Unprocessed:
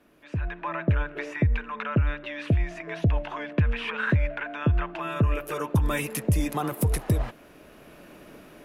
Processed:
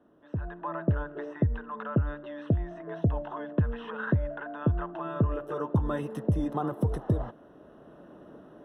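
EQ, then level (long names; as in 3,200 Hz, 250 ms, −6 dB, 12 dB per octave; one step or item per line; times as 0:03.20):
moving average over 19 samples
high-pass filter 110 Hz 6 dB per octave
0.0 dB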